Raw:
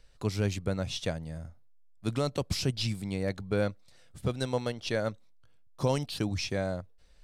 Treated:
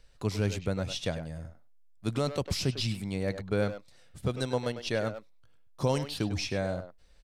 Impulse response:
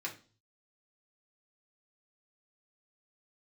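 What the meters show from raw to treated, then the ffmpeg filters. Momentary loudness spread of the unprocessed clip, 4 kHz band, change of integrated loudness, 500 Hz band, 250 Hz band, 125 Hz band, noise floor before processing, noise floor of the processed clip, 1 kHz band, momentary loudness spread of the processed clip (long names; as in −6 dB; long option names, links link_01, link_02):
7 LU, 0.0 dB, 0.0 dB, +0.5 dB, 0.0 dB, 0.0 dB, −56 dBFS, −56 dBFS, +0.5 dB, 9 LU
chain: -filter_complex "[0:a]asplit=2[link_01][link_02];[link_02]adelay=100,highpass=300,lowpass=3400,asoftclip=type=hard:threshold=-26dB,volume=-8dB[link_03];[link_01][link_03]amix=inputs=2:normalize=0"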